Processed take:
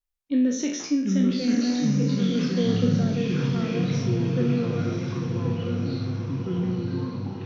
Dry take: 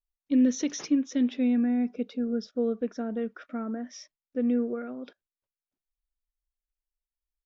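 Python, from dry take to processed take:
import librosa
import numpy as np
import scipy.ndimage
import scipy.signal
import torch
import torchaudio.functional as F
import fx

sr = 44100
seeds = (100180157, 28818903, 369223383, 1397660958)

y = fx.spec_trails(x, sr, decay_s=0.56)
y = fx.echo_pitch(y, sr, ms=633, semitones=-5, count=3, db_per_echo=-3.0)
y = fx.echo_diffused(y, sr, ms=1062, feedback_pct=50, wet_db=-5)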